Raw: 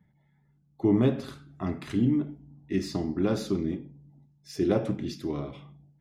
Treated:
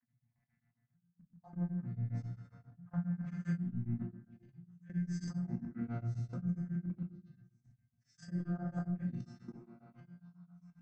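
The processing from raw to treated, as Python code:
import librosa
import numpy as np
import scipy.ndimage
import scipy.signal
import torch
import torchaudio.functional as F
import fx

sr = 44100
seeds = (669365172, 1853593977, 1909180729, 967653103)

p1 = fx.vocoder_arp(x, sr, chord='bare fifth', root=46, every_ms=503)
p2 = p1 + 0.4 * np.pad(p1, (int(5.6 * sr / 1000.0), 0))[:len(p1)]
p3 = fx.over_compress(p2, sr, threshold_db=-26.0, ratio=-0.5)
p4 = p2 + (p3 * 10.0 ** (1.0 / 20.0))
p5 = fx.stretch_vocoder_free(p4, sr, factor=1.8)
p6 = fx.low_shelf_res(p5, sr, hz=250.0, db=7.5, q=1.5)
p7 = fx.resonator_bank(p6, sr, root=42, chord='sus4', decay_s=0.26)
p8 = p7 + fx.echo_stepped(p7, sr, ms=347, hz=450.0, octaves=1.4, feedback_pct=70, wet_db=-11.0, dry=0)
p9 = fx.level_steps(p8, sr, step_db=20)
p10 = fx.curve_eq(p9, sr, hz=(200.0, 430.0, 770.0, 1600.0, 3600.0, 6300.0), db=(0, -8, 5, 14, -1, 12))
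p11 = fx.room_shoebox(p10, sr, seeds[0], volume_m3=590.0, walls='furnished', distance_m=2.0)
p12 = p11 * np.abs(np.cos(np.pi * 7.4 * np.arange(len(p11)) / sr))
y = p12 * 10.0 ** (2.0 / 20.0)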